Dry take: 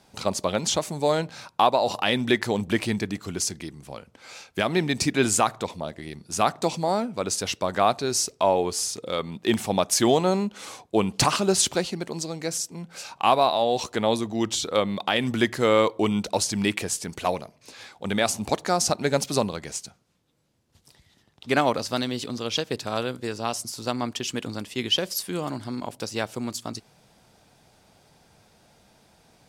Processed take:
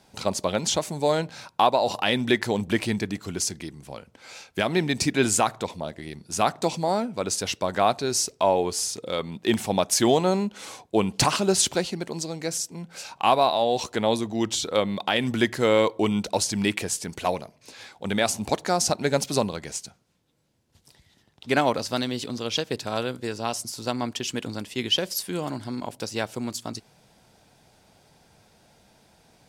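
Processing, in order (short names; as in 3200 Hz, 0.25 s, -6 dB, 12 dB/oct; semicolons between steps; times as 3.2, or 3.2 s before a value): notch 1200 Hz, Q 15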